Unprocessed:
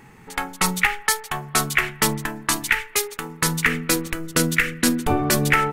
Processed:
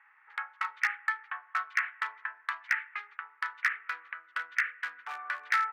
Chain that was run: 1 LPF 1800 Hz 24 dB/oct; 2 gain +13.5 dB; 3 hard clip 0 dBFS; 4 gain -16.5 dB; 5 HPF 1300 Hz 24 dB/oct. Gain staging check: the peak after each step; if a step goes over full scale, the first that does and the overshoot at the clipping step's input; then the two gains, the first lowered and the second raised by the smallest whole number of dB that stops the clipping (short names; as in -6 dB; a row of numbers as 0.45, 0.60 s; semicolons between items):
-7.5, +6.0, 0.0, -16.5, -14.0 dBFS; step 2, 6.0 dB; step 2 +7.5 dB, step 4 -10.5 dB